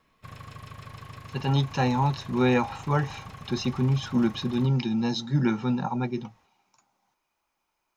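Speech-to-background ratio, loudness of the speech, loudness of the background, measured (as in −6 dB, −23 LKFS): 17.5 dB, −26.5 LKFS, −44.0 LKFS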